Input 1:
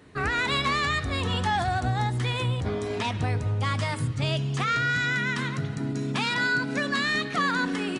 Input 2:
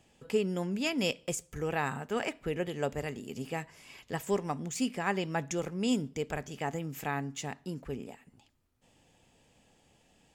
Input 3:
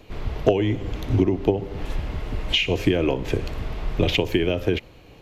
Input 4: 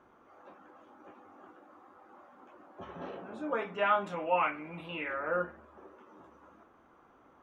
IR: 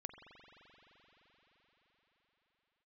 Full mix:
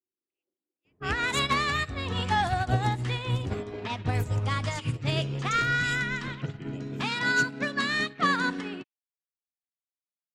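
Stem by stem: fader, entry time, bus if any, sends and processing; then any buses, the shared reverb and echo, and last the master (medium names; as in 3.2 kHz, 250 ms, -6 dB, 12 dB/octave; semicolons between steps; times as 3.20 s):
+3.0 dB, 0.85 s, no send, none
-1.5 dB, 0.00 s, no send, steep high-pass 2.2 kHz; treble shelf 4.2 kHz +7 dB
-16.0 dB, 2.25 s, no send, treble shelf 4.4 kHz +8 dB
-19.0 dB, 0.00 s, no send, peaking EQ 370 Hz +14 dB 0.62 oct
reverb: none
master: level-controlled noise filter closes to 320 Hz, open at -18.5 dBFS; upward expansion 2.5:1, over -33 dBFS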